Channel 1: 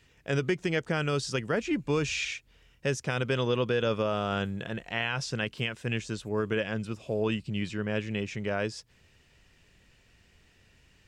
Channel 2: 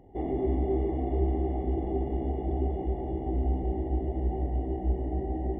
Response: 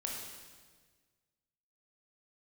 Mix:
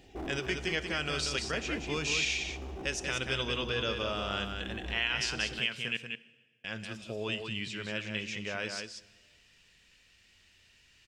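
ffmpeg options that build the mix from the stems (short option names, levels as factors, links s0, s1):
-filter_complex "[0:a]equalizer=f=3400:t=o:w=2.6:g=11,flanger=delay=2.8:depth=1.9:regen=-73:speed=0.27:shape=triangular,highshelf=f=4400:g=6.5,volume=0.422,asplit=3[s0][s1][s2];[s0]atrim=end=5.97,asetpts=PTS-STARTPTS,afade=t=out:st=5.966:d=0.004:c=hsin[s3];[s1]atrim=start=5.97:end=6.64,asetpts=PTS-STARTPTS,volume=0[s4];[s2]atrim=start=6.64,asetpts=PTS-STARTPTS,afade=t=in:d=0.004:c=hsin[s5];[s3][s4][s5]concat=n=3:v=0:a=1,asplit=4[s6][s7][s8][s9];[s7]volume=0.266[s10];[s8]volume=0.631[s11];[1:a]volume=33.5,asoftclip=hard,volume=0.0299,highshelf=f=3600:g=11,volume=0.596[s12];[s9]apad=whole_len=246904[s13];[s12][s13]sidechaincompress=threshold=0.0141:ratio=8:attack=46:release=1160[s14];[2:a]atrim=start_sample=2205[s15];[s10][s15]afir=irnorm=-1:irlink=0[s16];[s11]aecho=0:1:186:1[s17];[s6][s14][s16][s17]amix=inputs=4:normalize=0"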